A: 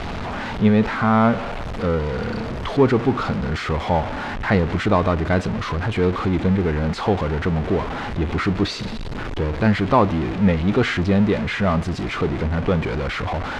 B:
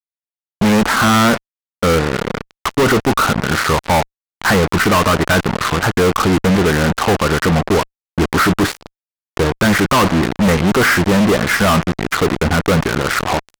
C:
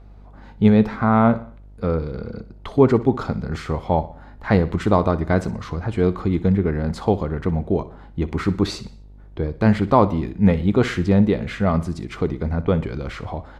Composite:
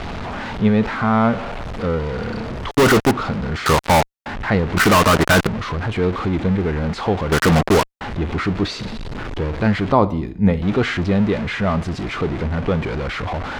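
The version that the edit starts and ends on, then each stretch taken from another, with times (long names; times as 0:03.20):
A
0:02.71–0:03.11: punch in from B
0:03.66–0:04.26: punch in from B
0:04.77–0:05.47: punch in from B
0:07.32–0:08.01: punch in from B
0:09.92–0:10.62: punch in from C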